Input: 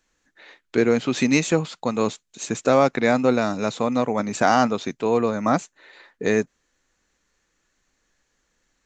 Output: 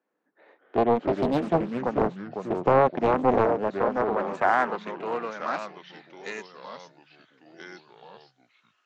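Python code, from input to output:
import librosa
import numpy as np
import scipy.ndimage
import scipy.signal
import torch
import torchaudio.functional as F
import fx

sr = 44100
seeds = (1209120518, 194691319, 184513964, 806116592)

y = scipy.signal.sosfilt(scipy.signal.ellip(4, 1.0, 40, 160.0, 'highpass', fs=sr, output='sos'), x)
y = fx.high_shelf(y, sr, hz=3500.0, db=-10.5)
y = fx.echo_pitch(y, sr, ms=151, semitones=-3, count=3, db_per_echo=-6.0)
y = fx.filter_sweep_bandpass(y, sr, from_hz=540.0, to_hz=4100.0, start_s=3.51, end_s=6.23, q=0.9)
y = fx.doppler_dist(y, sr, depth_ms=0.78)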